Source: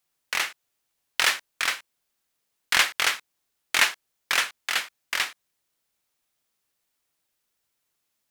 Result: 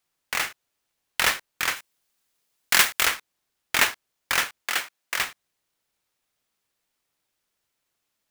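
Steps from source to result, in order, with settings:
each half-wave held at its own peak
0:01.76–0:03.07: high-shelf EQ 4,200 Hz +6.5 dB
0:04.62–0:05.17: high-pass filter 170 Hz → 380 Hz 6 dB per octave
level −4 dB

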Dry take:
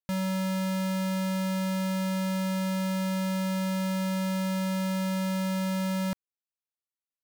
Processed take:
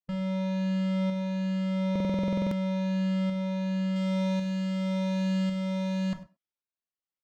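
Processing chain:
rippled gain that drifts along the octave scale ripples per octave 1.5, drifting +1.3 Hz, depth 8 dB
high-shelf EQ 4,800 Hz −6 dB, from 0:03.96 +3 dB
shaped tremolo saw up 0.91 Hz, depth 40%
high-frequency loss of the air 150 metres
far-end echo of a speakerphone 100 ms, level −15 dB
convolution reverb, pre-delay 6 ms, DRR 7 dB
buffer that repeats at 0:01.91, samples 2,048, times 12

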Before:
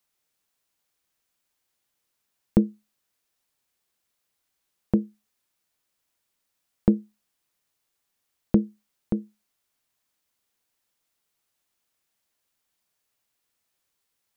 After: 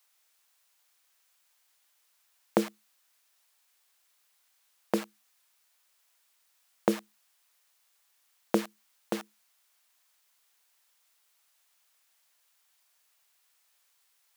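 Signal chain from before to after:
in parallel at −7 dB: bit-depth reduction 6 bits, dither none
on the sum: high-pass filter 760 Hz 12 dB per octave
level +8 dB

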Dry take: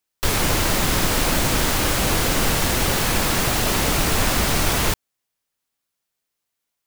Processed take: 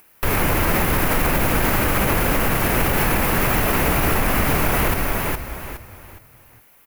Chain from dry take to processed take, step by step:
flat-topped bell 5,400 Hz −12 dB
upward compression, threshold −38 dBFS
on a send: echo with shifted repeats 415 ms, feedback 32%, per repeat −34 Hz, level −6 dB
on the sum: boost into a limiter +12.5 dB
level −8 dB

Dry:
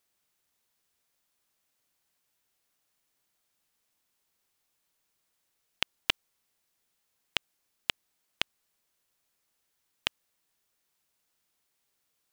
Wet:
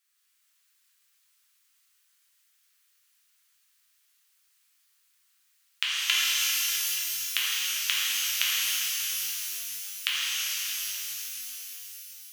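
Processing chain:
high-pass filter 1,300 Hz 24 dB per octave
reverb with rising layers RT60 4 s, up +12 semitones, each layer −2 dB, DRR −8.5 dB

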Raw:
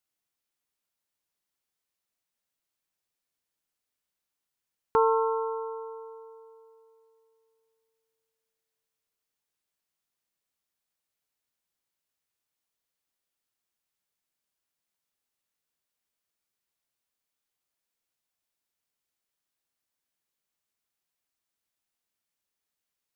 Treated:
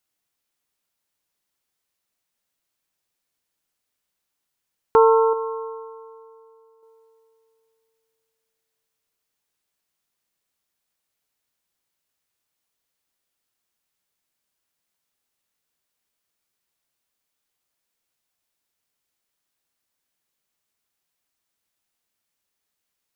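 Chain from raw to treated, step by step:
dynamic equaliser 340 Hz, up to +4 dB, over −39 dBFS, Q 0.87
0:05.33–0:06.83: tuned comb filter 120 Hz, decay 0.69 s, mix 50%
level +6 dB

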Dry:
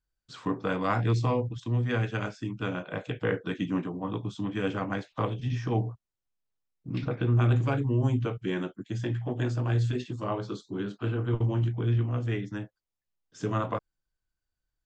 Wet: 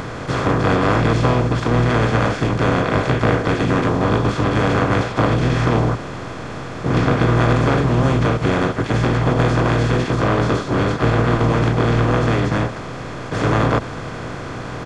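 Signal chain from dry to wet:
compressor on every frequency bin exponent 0.2
echo ahead of the sound 98 ms −17.5 dB
pitch-shifted copies added −12 semitones −9 dB, +5 semitones −8 dB
level +3 dB

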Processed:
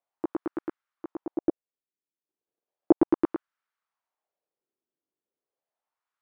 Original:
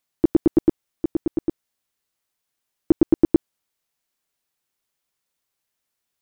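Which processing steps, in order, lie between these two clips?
LFO wah 0.35 Hz 320–1,400 Hz, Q 2.4
0:01.37–0:03.26: transient designer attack +7 dB, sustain −11 dB
level +3.5 dB

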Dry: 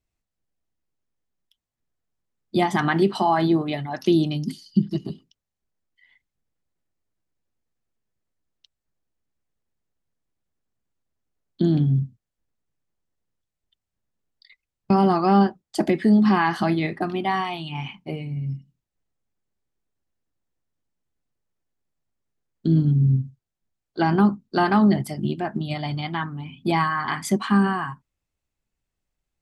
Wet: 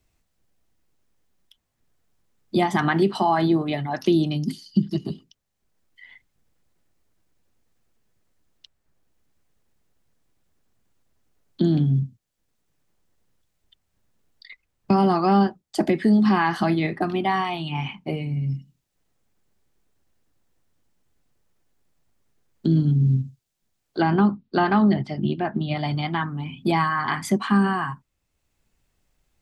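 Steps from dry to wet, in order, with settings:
0:24.02–0:25.77: low-pass filter 4,200 Hz 24 dB per octave
multiband upward and downward compressor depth 40%

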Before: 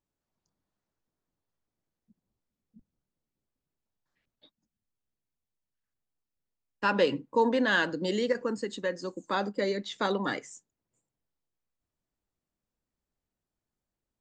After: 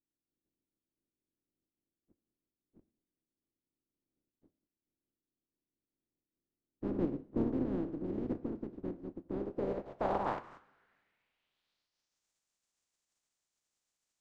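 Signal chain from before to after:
compressing power law on the bin magnitudes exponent 0.12
coupled-rooms reverb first 0.51 s, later 2.1 s, from −20 dB, DRR 14 dB
low-pass filter sweep 310 Hz → 7,200 Hz, 0:09.27–0:12.29

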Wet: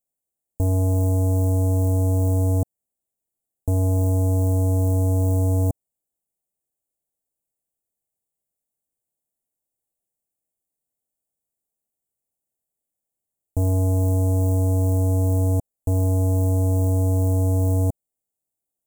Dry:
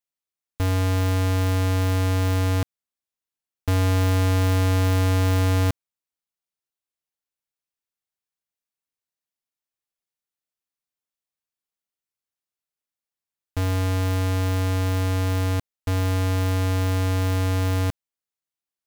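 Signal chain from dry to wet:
elliptic band-stop filter 730–7,600 Hz, stop band 50 dB
brickwall limiter −23 dBFS, peak gain reduction 8 dB
level +8.5 dB

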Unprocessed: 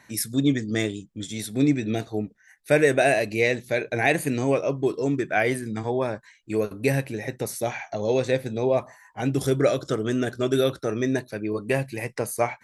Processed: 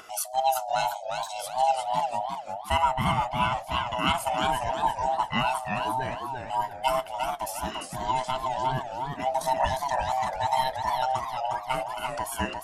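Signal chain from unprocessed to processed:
neighbouring bands swapped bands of 500 Hz
low-shelf EQ 120 Hz −11.5 dB
upward compression, threshold −37 dBFS
0:02.82–0:03.52: high-shelf EQ 2,900 Hz −11.5 dB
feedback echo with a swinging delay time 350 ms, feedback 35%, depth 172 cents, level −5 dB
level −3 dB

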